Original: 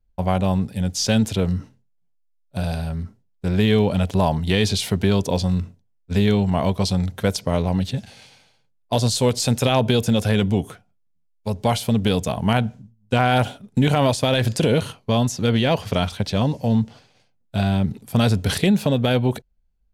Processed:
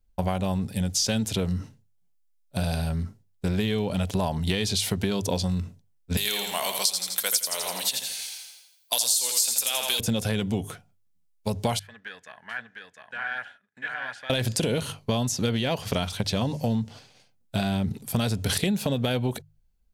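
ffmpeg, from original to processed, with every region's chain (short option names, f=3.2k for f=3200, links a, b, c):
-filter_complex "[0:a]asettb=1/sr,asplit=3[a][b][c];[a]atrim=end=6.174[d];[b]atrim=start=6.17:end=10,asetpts=PTS-STARTPTS,afade=t=in:d=0.004:c=qsin,afade=t=out:st=3.826:d=0.004:c=qsin,highpass=f=1.2k:p=1,aemphasis=mode=production:type=riaa,aecho=1:1:83|166|249|332|415|498:0.501|0.241|0.115|0.0554|0.0266|0.0128,atrim=end_sample=168903[e];[c]atrim=start=9.996[f];[d][e]acrossfade=d=0.004:c1=hsin:c2=qsin[g];[g][f]acrossfade=d=0.004:c1=qsin:c2=hsin,asettb=1/sr,asplit=3[h][i][j];[h]atrim=end=11.794[k];[i]atrim=start=11.79:end=14.3,asetpts=PTS-STARTPTS,afade=t=in:d=0.004:c=qsin,afade=t=out:st=2.506:d=0.004:c=qsin,acontrast=63,bandpass=f=1.7k:t=q:w=14,aecho=1:1:704:0.668,atrim=end_sample=110691[l];[j]atrim=start=14.296[m];[k][l]acrossfade=d=0.004:c1=hsin:c2=qsin[n];[n][m]acrossfade=d=0.004:c1=qsin:c2=hsin,highshelf=f=3.9k:g=7.5,bandreject=f=50:t=h:w=6,bandreject=f=100:t=h:w=6,bandreject=f=150:t=h:w=6,acompressor=threshold=-22dB:ratio=6"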